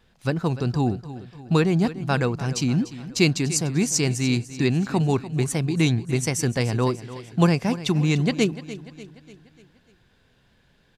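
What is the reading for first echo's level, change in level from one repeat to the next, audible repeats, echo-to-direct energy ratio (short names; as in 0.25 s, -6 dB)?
-15.0 dB, -6.0 dB, 4, -13.5 dB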